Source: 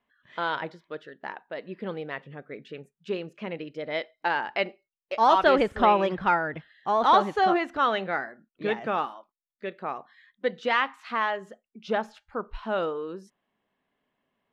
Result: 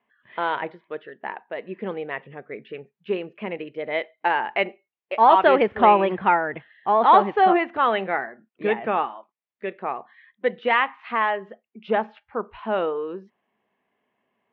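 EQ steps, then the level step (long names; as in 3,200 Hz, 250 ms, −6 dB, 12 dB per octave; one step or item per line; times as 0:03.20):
loudspeaker in its box 140–2,700 Hz, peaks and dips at 160 Hz −8 dB, 280 Hz −7 dB, 560 Hz −4 dB
parametric band 1,400 Hz −6 dB 0.6 octaves
+7.0 dB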